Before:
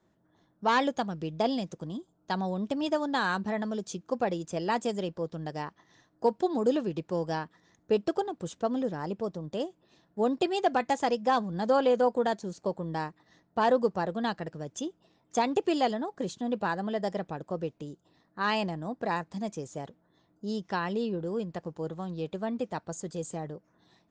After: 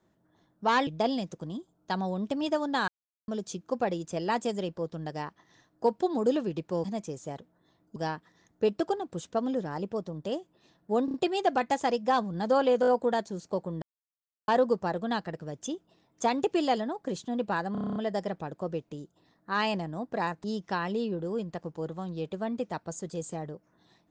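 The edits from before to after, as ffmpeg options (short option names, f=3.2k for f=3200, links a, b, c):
-filter_complex "[0:a]asplit=23[a][b][c][d][e][f][g][h][i][j][k][l][m][n][o][p][q][r][s][t][u][v][w];[a]atrim=end=0.872[x];[b]atrim=start=1.268:end=3.28,asetpts=PTS-STARTPTS,afade=t=out:st=2.008:d=0.004:c=hsin[y];[c]atrim=start=3.28:end=3.68,asetpts=PTS-STARTPTS,volume=0[z];[d]atrim=start=3.68:end=7.242,asetpts=PTS-STARTPTS,afade=t=in:d=0.004:c=hsin[aa];[e]atrim=start=19.328:end=20.452[ab];[f]atrim=start=7.238:end=10.362[ac];[g]atrim=start=10.328:end=10.362[ad];[h]atrim=start=10.328:end=10.362[ae];[i]atrim=start=10.328:end=12.022[af];[j]atrim=start=11.998:end=12.022[ag];[k]atrim=start=11.998:end=12.022[ah];[l]atrim=start=11.998:end=12.95,asetpts=PTS-STARTPTS,afade=t=out:st=0.948:d=0.004:c=hsin[ai];[m]atrim=start=12.95:end=13.61,asetpts=PTS-STARTPTS,volume=0[aj];[n]atrim=start=13.61:end=16.882,asetpts=PTS-STARTPTS,afade=t=in:d=0.004:c=hsin[ak];[o]atrim=start=16.848:end=16.882[al];[p]atrim=start=16.848:end=16.882[am];[q]atrim=start=16.848:end=16.882[an];[r]atrim=start=16.848:end=16.882[ao];[s]atrim=start=16.848:end=16.882[ap];[t]atrim=start=16.848:end=16.882[aq];[u]atrim=start=16.848:end=16.882[ar];[v]atrim=start=16.848:end=19.332[as];[w]atrim=start=20.448[at];[y][z][aa]concat=n=3:v=0:a=1[au];[x][au]acrossfade=d=0.004:c1=hsin:c2=hsin[av];[av][ab]acrossfade=d=0.004:c1=hsin:c2=hsin[aw];[aw][ac]acrossfade=d=0.004:c1=hsin:c2=hsin[ax];[ax][ad]acrossfade=d=0.004:c1=hsin:c2=hsin[ay];[ay][ae]acrossfade=d=0.004:c1=hsin:c2=hsin[az];[az][af]acrossfade=d=0.004:c1=hsin:c2=hsin[ba];[ba][ag]acrossfade=d=0.004:c1=hsin:c2=hsin[bb];[bb][ah]acrossfade=d=0.004:c1=hsin:c2=hsin[bc];[ai][aj][ak]concat=n=3:v=0:a=1[bd];[bc][bd]acrossfade=d=0.004:c1=hsin:c2=hsin[be];[be][al]acrossfade=d=0.004:c1=hsin:c2=hsin[bf];[bf][am]acrossfade=d=0.004:c1=hsin:c2=hsin[bg];[bg][an]acrossfade=d=0.004:c1=hsin:c2=hsin[bh];[bh][ao]acrossfade=d=0.004:c1=hsin:c2=hsin[bi];[bi][ap]acrossfade=d=0.004:c1=hsin:c2=hsin[bj];[bj][aq]acrossfade=d=0.004:c1=hsin:c2=hsin[bk];[bk][ar]acrossfade=d=0.004:c1=hsin:c2=hsin[bl];[bl][as]acrossfade=d=0.004:c1=hsin:c2=hsin[bm];[bm][at]acrossfade=d=0.004:c1=hsin:c2=hsin"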